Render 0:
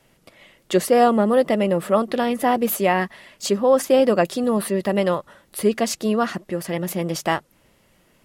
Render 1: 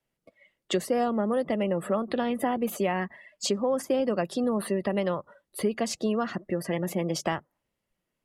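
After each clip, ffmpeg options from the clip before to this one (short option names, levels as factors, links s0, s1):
-filter_complex "[0:a]afftdn=nr=24:nf=-39,acrossover=split=210|7700[s0][s1][s2];[s0]acompressor=threshold=0.0178:ratio=4[s3];[s1]acompressor=threshold=0.0501:ratio=4[s4];[s2]acompressor=threshold=0.00501:ratio=4[s5];[s3][s4][s5]amix=inputs=3:normalize=0"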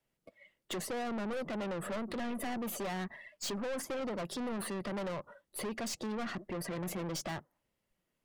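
-af "aeval=exprs='(tanh(56.2*val(0)+0.3)-tanh(0.3))/56.2':c=same"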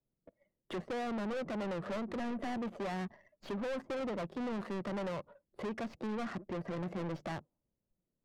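-af "aeval=exprs='0.0237*(cos(1*acos(clip(val(0)/0.0237,-1,1)))-cos(1*PI/2))+0.00133*(cos(6*acos(clip(val(0)/0.0237,-1,1)))-cos(6*PI/2))':c=same,adynamicsmooth=sensitivity=8:basefreq=510"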